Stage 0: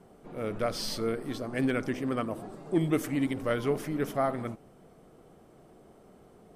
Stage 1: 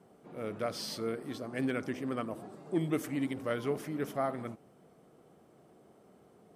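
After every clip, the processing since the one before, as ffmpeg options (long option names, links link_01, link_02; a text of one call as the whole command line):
ffmpeg -i in.wav -af "highpass=100,volume=-4.5dB" out.wav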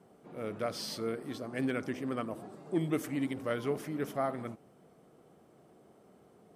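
ffmpeg -i in.wav -af anull out.wav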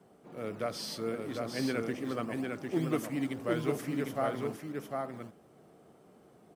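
ffmpeg -i in.wav -filter_complex "[0:a]acrossover=split=190|2400[link_01][link_02][link_03];[link_01]acrusher=samples=24:mix=1:aa=0.000001:lfo=1:lforange=14.4:lforate=3.4[link_04];[link_04][link_02][link_03]amix=inputs=3:normalize=0,aecho=1:1:752:0.668" out.wav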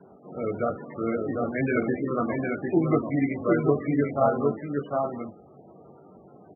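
ffmpeg -i in.wav -filter_complex "[0:a]asplit=2[link_01][link_02];[link_02]adelay=21,volume=-5dB[link_03];[link_01][link_03]amix=inputs=2:normalize=0,volume=8dB" -ar 24000 -c:a libmp3lame -b:a 8k out.mp3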